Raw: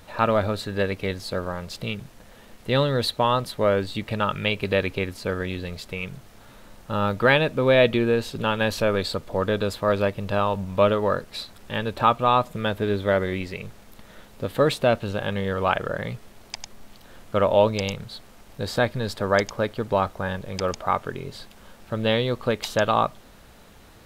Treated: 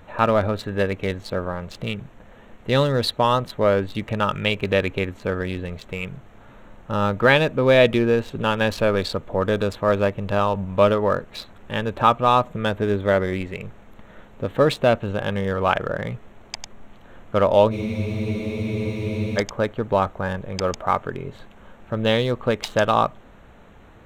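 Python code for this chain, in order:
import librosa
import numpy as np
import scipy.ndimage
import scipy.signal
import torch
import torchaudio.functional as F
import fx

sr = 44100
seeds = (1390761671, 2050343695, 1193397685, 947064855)

y = fx.wiener(x, sr, points=9)
y = fx.spec_freeze(y, sr, seeds[0], at_s=17.74, hold_s=1.63)
y = y * librosa.db_to_amplitude(2.5)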